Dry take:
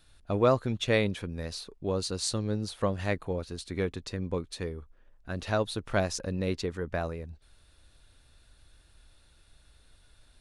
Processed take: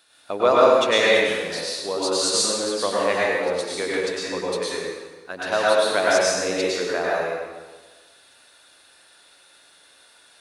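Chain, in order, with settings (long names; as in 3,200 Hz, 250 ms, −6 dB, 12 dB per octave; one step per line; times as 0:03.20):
high-pass filter 480 Hz 12 dB per octave
dense smooth reverb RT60 1.3 s, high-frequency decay 0.9×, pre-delay 90 ms, DRR −6.5 dB
level +6 dB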